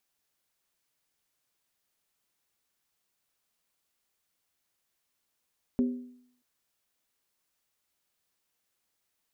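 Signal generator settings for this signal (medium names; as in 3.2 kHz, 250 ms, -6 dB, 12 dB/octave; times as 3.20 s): skin hit, lowest mode 248 Hz, decay 0.67 s, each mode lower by 10.5 dB, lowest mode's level -20.5 dB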